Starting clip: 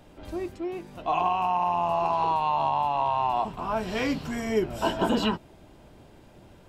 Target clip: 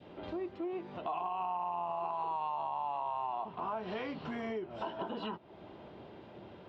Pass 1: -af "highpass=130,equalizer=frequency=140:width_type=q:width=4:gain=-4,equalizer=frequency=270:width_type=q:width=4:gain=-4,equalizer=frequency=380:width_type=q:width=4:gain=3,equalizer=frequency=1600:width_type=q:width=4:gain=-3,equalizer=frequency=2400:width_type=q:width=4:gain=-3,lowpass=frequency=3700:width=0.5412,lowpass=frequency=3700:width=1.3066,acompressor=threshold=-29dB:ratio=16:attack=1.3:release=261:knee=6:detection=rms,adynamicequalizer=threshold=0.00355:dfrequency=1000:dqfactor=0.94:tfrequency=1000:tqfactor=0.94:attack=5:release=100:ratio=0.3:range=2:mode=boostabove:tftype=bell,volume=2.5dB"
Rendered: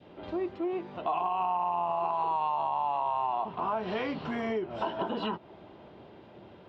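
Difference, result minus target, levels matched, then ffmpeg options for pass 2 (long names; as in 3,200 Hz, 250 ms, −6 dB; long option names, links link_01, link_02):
downward compressor: peak gain reduction −6.5 dB
-af "highpass=130,equalizer=frequency=140:width_type=q:width=4:gain=-4,equalizer=frequency=270:width_type=q:width=4:gain=-4,equalizer=frequency=380:width_type=q:width=4:gain=3,equalizer=frequency=1600:width_type=q:width=4:gain=-3,equalizer=frequency=2400:width_type=q:width=4:gain=-3,lowpass=frequency=3700:width=0.5412,lowpass=frequency=3700:width=1.3066,acompressor=threshold=-36dB:ratio=16:attack=1.3:release=261:knee=6:detection=rms,adynamicequalizer=threshold=0.00355:dfrequency=1000:dqfactor=0.94:tfrequency=1000:tqfactor=0.94:attack=5:release=100:ratio=0.3:range=2:mode=boostabove:tftype=bell,volume=2.5dB"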